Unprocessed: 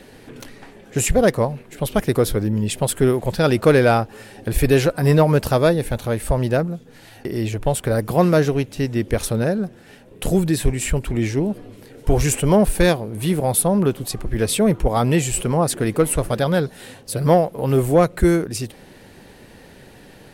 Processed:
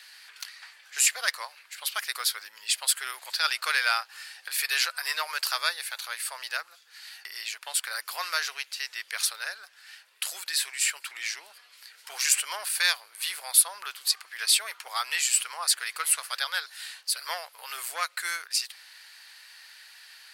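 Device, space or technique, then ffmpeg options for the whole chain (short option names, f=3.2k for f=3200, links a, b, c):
headphones lying on a table: -af "highpass=f=1.3k:w=0.5412,highpass=f=1.3k:w=1.3066,equalizer=f=4.6k:t=o:w=0.36:g=9.5"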